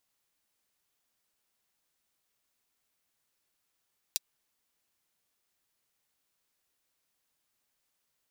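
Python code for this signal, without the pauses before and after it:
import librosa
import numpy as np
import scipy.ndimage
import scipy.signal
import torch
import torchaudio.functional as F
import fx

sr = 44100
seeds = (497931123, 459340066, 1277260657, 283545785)

y = fx.drum_hat(sr, length_s=0.24, from_hz=4000.0, decay_s=0.03)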